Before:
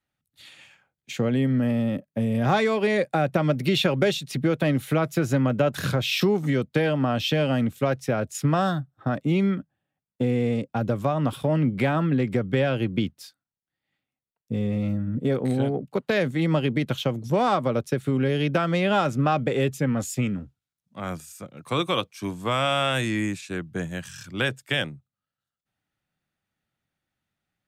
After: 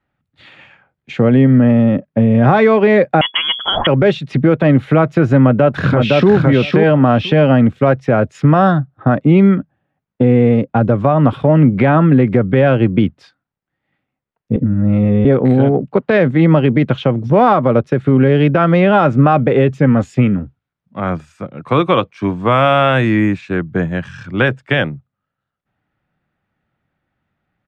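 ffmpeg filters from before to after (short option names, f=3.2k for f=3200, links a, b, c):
-filter_complex "[0:a]asettb=1/sr,asplit=3[a][b][c];[a]atrim=end=3.214[d];[b]atrim=start=3.21:end=3.87,asetpts=PTS-STARTPTS,afade=t=in:d=0.004:c=qsin,afade=t=out:st=0.656:d=0.004:c=qsin,lowpass=f=3k:t=q:w=0.5098,lowpass=f=3k:t=q:w=0.6013,lowpass=f=3k:t=q:w=0.9,lowpass=f=3k:t=q:w=2.563,afreqshift=-3500[e];[c]atrim=start=3.866[f];[d][e]acrossfade=d=0.004:c1=hsin:c2=qsin[g];[g][f]acrossfade=d=0.004:c1=qsin:c2=hsin,asplit=2[h][i];[i]afade=t=in:st=5.41:d=0.01,afade=t=out:st=6.32:d=0.01,aecho=0:1:510|1020:0.707946|0.0707946[j];[h][j]amix=inputs=2:normalize=0,asplit=3[k][l][m];[k]atrim=end=14.562[n];[l]atrim=start=14.558:end=15.252,asetpts=PTS-STARTPTS,areverse[o];[m]atrim=start=15.248[p];[n][o]acrossfade=d=0.004:c1=hsin:c2=hsin[q];[q][p]acrossfade=d=0.004:c1=hsin:c2=hsin,lowpass=1.9k,alimiter=level_in=14dB:limit=-1dB:release=50:level=0:latency=1,volume=-1dB"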